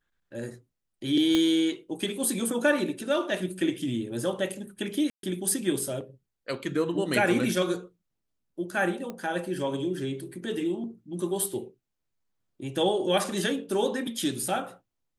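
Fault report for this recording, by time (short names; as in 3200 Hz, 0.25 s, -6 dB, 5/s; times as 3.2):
1.35 pop -12 dBFS
5.1–5.23 gap 0.132 s
9.1 pop -22 dBFS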